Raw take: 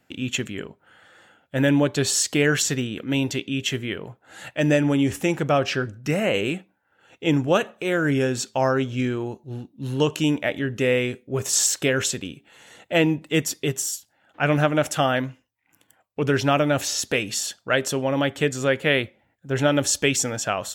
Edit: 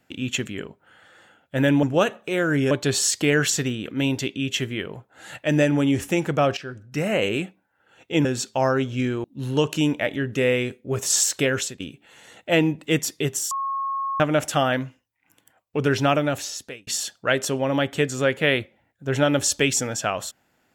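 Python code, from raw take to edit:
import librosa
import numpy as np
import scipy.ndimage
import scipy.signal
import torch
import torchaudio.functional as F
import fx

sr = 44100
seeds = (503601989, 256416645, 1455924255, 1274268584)

y = fx.edit(x, sr, fx.fade_in_from(start_s=5.69, length_s=0.58, floor_db=-15.0),
    fx.move(start_s=7.37, length_s=0.88, to_s=1.83),
    fx.cut(start_s=9.24, length_s=0.43),
    fx.fade_out_to(start_s=11.84, length_s=0.39, curve='qsin', floor_db=-15.5),
    fx.bleep(start_s=13.94, length_s=0.69, hz=1090.0, db=-23.5),
    fx.fade_out_span(start_s=16.53, length_s=0.77), tone=tone)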